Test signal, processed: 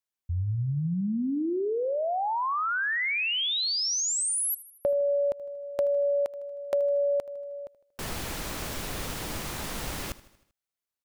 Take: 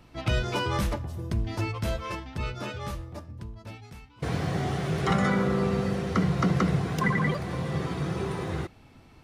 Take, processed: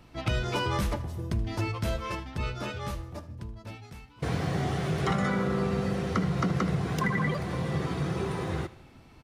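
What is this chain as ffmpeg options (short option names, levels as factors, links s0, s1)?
-filter_complex "[0:a]acompressor=threshold=0.0708:ratio=6,asplit=2[s0][s1];[s1]aecho=0:1:78|156|234|312|390:0.119|0.0666|0.0373|0.0209|0.0117[s2];[s0][s2]amix=inputs=2:normalize=0"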